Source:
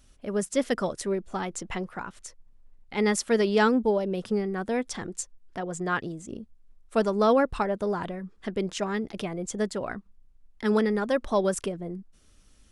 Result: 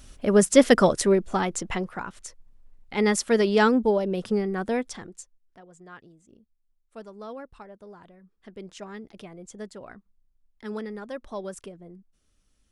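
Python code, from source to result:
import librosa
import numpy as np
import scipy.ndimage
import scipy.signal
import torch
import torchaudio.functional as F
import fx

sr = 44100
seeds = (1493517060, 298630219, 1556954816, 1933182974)

y = fx.gain(x, sr, db=fx.line((0.87, 10.0), (1.98, 2.0), (4.73, 2.0), (5.08, -7.0), (5.66, -18.0), (8.11, -18.0), (8.74, -10.5)))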